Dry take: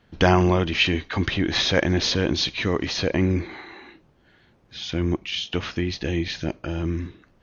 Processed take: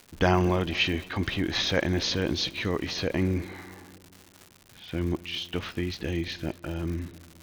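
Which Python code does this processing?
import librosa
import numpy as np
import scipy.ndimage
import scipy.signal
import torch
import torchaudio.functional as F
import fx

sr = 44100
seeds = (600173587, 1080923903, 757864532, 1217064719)

y = fx.echo_filtered(x, sr, ms=225, feedback_pct=61, hz=2000.0, wet_db=-20)
y = fx.env_lowpass(y, sr, base_hz=1000.0, full_db=-20.5)
y = fx.dmg_crackle(y, sr, seeds[0], per_s=230.0, level_db=-31.0)
y = y * 10.0 ** (-5.0 / 20.0)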